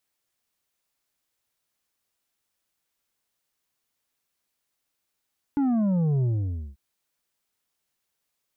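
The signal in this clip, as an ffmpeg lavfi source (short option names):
-f lavfi -i "aevalsrc='0.0891*clip((1.19-t)/0.53,0,1)*tanh(2.11*sin(2*PI*290*1.19/log(65/290)*(exp(log(65/290)*t/1.19)-1)))/tanh(2.11)':d=1.19:s=44100"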